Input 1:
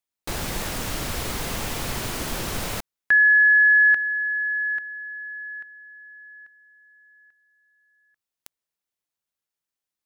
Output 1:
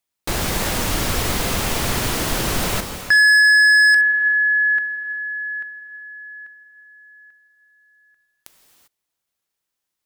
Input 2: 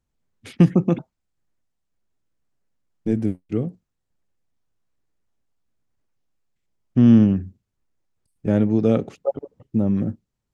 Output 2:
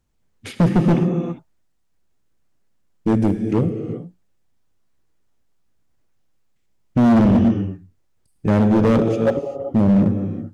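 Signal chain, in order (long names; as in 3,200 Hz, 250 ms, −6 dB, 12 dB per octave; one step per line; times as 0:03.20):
reverb whose tail is shaped and stops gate 420 ms flat, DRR 6 dB
hard clipping −17.5 dBFS
level +6.5 dB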